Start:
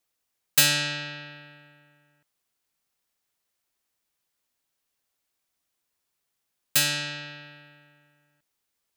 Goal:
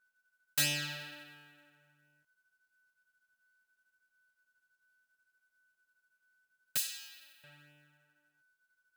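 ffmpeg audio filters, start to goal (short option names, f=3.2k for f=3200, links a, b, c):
-filter_complex "[0:a]aeval=exprs='val(0)+0.000708*sin(2*PI*1500*n/s)':c=same,flanger=delay=16:depth=4.1:speed=0.71,acrusher=bits=3:mode=log:mix=0:aa=0.000001,asettb=1/sr,asplit=3[a][b][c];[a]atrim=end=6.774[d];[b]atrim=start=6.77:end=7.44,asetpts=PTS-STARTPTS,afade=t=in:d=0.004:c=qsin,afade=t=out:st=0.666:d=0.004:c=qsin,aderivative[e];[c]atrim=start=7.436[f];[d][e]acrossfade=d=0.004:c1=hsin:c2=qsin[g];[g][f]acrossfade=d=0.004:c1=qsin:c2=hsin,volume=-8dB"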